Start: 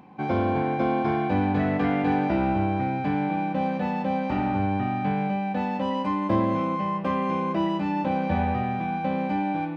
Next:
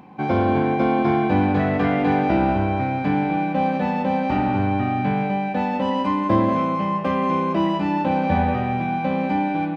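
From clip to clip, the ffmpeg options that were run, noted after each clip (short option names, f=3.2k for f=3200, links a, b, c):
-filter_complex "[0:a]asplit=2[a][b];[b]adelay=186.6,volume=-10dB,highshelf=f=4k:g=-4.2[c];[a][c]amix=inputs=2:normalize=0,volume=4.5dB"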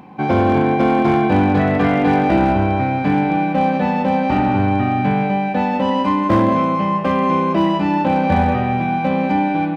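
-af "asoftclip=type=hard:threshold=-12.5dB,volume=4.5dB"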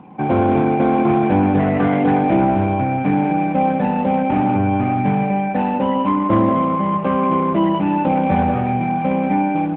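-af "lowpass=f=3k:p=1" -ar 8000 -c:a libopencore_amrnb -b:a 12200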